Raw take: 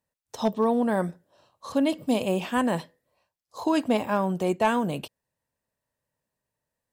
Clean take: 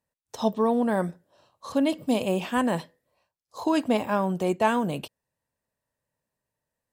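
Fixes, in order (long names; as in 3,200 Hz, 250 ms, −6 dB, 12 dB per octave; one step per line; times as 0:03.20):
clipped peaks rebuilt −13 dBFS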